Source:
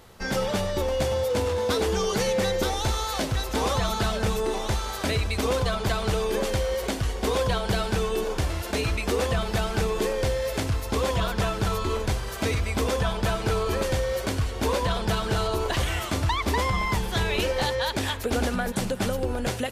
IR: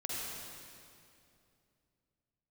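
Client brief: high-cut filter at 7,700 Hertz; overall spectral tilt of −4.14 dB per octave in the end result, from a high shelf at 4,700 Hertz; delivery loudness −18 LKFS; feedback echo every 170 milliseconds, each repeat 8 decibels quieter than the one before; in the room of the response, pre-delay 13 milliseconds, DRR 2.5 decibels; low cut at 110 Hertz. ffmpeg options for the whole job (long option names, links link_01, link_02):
-filter_complex "[0:a]highpass=110,lowpass=7700,highshelf=frequency=4700:gain=-6.5,aecho=1:1:170|340|510|680|850:0.398|0.159|0.0637|0.0255|0.0102,asplit=2[link_01][link_02];[1:a]atrim=start_sample=2205,adelay=13[link_03];[link_02][link_03]afir=irnorm=-1:irlink=0,volume=-5.5dB[link_04];[link_01][link_04]amix=inputs=2:normalize=0,volume=7dB"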